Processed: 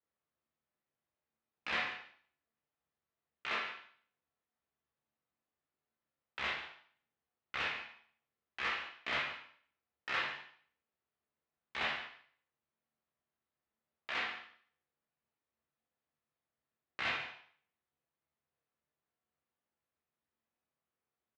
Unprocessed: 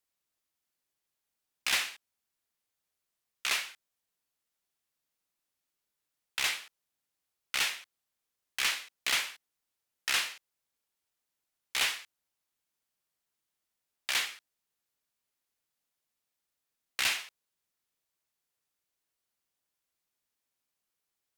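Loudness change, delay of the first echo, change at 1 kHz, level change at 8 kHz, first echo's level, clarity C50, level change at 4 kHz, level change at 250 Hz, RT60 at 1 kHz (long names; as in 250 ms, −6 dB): −7.0 dB, 143 ms, +0.5 dB, −26.5 dB, −13.0 dB, 5.0 dB, −10.5 dB, +3.0 dB, 0.55 s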